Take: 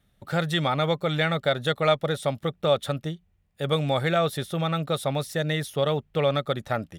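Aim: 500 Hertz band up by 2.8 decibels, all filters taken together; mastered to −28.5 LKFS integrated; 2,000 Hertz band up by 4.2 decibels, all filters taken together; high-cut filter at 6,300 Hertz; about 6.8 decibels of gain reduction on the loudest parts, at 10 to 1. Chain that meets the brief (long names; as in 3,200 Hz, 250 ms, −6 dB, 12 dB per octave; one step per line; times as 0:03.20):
low-pass filter 6,300 Hz
parametric band 500 Hz +3 dB
parametric band 2,000 Hz +5 dB
downward compressor 10 to 1, threshold −21 dBFS
level −1 dB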